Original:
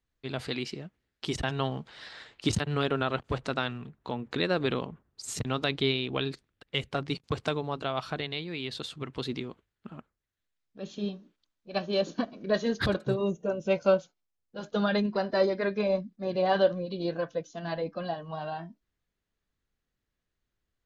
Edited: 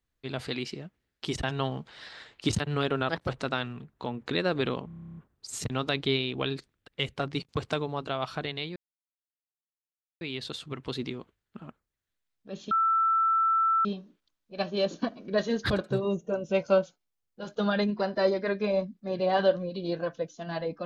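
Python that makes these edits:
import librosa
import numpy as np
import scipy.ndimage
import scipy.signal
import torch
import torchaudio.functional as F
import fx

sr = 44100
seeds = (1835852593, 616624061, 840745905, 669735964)

y = fx.edit(x, sr, fx.speed_span(start_s=3.09, length_s=0.25, speed=1.25),
    fx.stutter(start_s=4.91, slice_s=0.03, count=11),
    fx.insert_silence(at_s=8.51, length_s=1.45),
    fx.insert_tone(at_s=11.01, length_s=1.14, hz=1330.0, db=-21.0), tone=tone)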